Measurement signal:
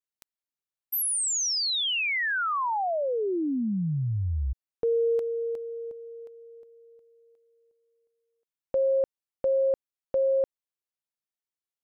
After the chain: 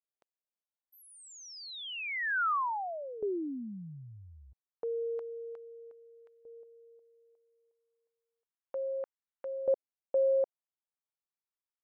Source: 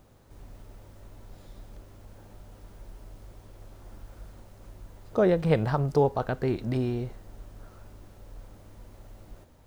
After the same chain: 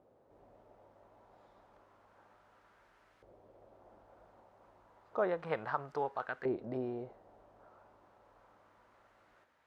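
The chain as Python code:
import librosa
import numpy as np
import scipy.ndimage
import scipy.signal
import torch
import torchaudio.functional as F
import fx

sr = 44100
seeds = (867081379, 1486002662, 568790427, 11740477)

y = fx.filter_lfo_bandpass(x, sr, shape='saw_up', hz=0.31, low_hz=530.0, high_hz=1700.0, q=1.5)
y = y * 10.0 ** (-1.5 / 20.0)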